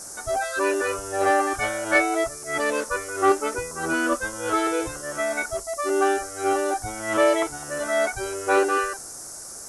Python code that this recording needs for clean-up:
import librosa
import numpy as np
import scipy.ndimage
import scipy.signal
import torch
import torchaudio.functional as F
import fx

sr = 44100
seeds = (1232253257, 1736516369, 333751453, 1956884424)

y = fx.noise_reduce(x, sr, print_start_s=9.16, print_end_s=9.66, reduce_db=30.0)